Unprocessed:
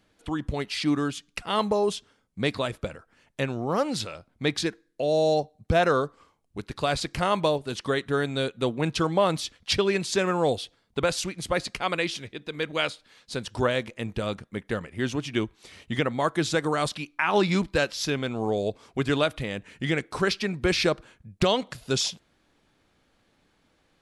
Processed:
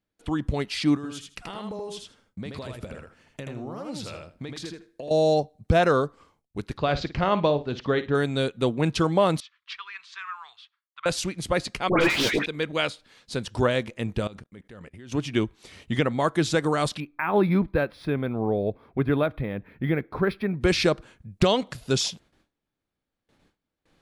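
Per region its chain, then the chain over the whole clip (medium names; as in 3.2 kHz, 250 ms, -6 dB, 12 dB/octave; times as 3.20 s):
0.95–5.11 s: compression 16:1, threshold -34 dBFS + feedback delay 80 ms, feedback 15%, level -3.5 dB
6.77–8.15 s: Bessel low-pass 3.6 kHz, order 8 + flutter echo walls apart 9.3 m, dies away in 0.24 s + tape noise reduction on one side only decoder only
9.40–11.06 s: elliptic high-pass 1.1 kHz, stop band 50 dB + tape spacing loss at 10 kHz 35 dB
11.89–12.46 s: high-pass 150 Hz + overdrive pedal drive 34 dB, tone 2.2 kHz, clips at -13 dBFS + phase dispersion highs, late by 120 ms, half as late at 1.6 kHz
14.27–15.12 s: expander -58 dBFS + level held to a coarse grid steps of 23 dB + tape noise reduction on one side only encoder only
17.00–20.61 s: distance through air 410 m + band-stop 2.9 kHz, Q 5.9 + decimation joined by straight lines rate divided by 3×
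whole clip: gate with hold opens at -55 dBFS; bass shelf 460 Hz +4 dB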